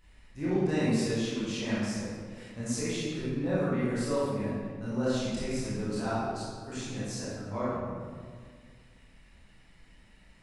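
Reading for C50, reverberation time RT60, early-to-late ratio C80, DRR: -4.0 dB, 1.8 s, -1.0 dB, -10.0 dB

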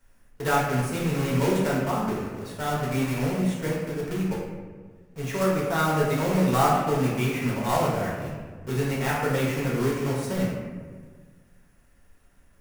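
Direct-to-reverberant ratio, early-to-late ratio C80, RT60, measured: -5.5 dB, 3.0 dB, 1.5 s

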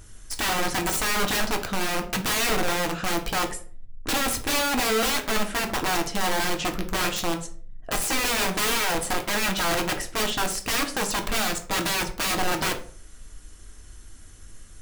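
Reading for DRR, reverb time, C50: 3.5 dB, 0.45 s, 12.0 dB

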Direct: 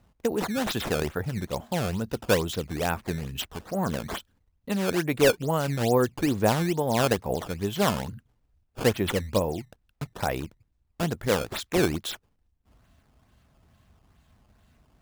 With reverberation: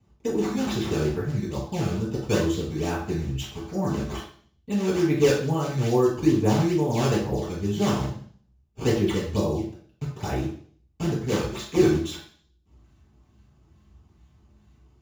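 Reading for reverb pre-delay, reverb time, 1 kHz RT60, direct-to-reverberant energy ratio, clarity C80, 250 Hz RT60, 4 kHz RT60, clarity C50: 3 ms, 0.50 s, 0.50 s, -9.0 dB, 8.0 dB, 0.50 s, 0.55 s, 4.0 dB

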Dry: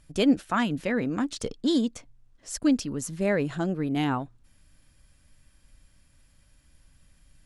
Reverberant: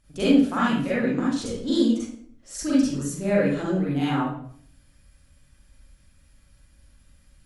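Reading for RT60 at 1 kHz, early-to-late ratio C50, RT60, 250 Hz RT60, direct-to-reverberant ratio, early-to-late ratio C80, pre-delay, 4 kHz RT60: 0.55 s, -2.0 dB, 0.60 s, 0.75 s, -9.0 dB, 4.0 dB, 38 ms, 0.45 s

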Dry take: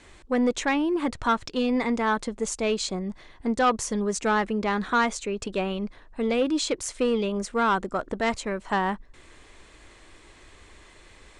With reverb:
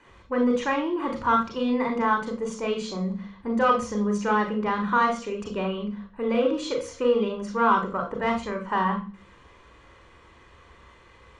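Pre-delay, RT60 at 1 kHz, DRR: 30 ms, 0.35 s, 2.0 dB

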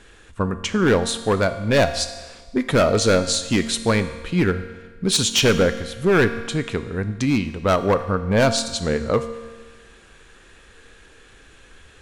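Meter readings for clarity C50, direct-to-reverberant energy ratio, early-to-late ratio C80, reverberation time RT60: 11.0 dB, 9.0 dB, 12.5 dB, 1.4 s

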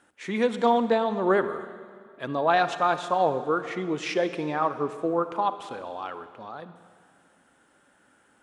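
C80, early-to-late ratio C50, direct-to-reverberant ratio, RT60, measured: 12.5 dB, 11.5 dB, 11.0 dB, 2.1 s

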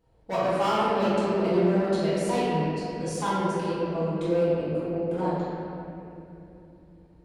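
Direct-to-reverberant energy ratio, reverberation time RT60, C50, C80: -13.5 dB, 2.8 s, -4.5 dB, -2.5 dB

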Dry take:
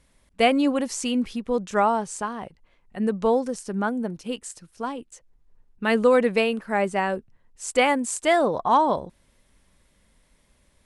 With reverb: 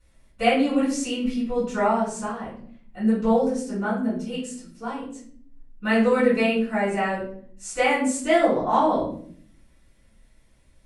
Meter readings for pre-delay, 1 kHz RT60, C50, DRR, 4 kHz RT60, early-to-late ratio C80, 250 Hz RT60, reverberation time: 3 ms, 0.45 s, 4.0 dB, -12.5 dB, 0.40 s, 8.5 dB, 1.0 s, 0.55 s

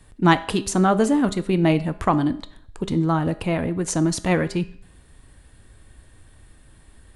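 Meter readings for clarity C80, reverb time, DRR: 19.5 dB, 0.60 s, 12.0 dB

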